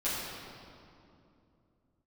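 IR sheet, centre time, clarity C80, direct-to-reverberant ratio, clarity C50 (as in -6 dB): 141 ms, -0.5 dB, -12.0 dB, -2.0 dB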